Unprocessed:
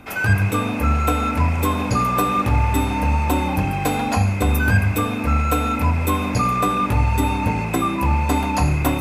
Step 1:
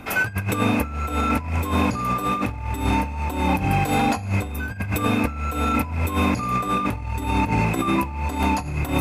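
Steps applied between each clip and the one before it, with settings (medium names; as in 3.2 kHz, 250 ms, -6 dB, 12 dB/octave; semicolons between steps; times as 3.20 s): compressor with a negative ratio -22 dBFS, ratio -0.5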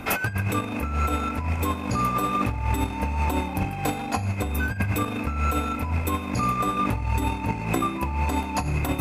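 compressor with a negative ratio -24 dBFS, ratio -0.5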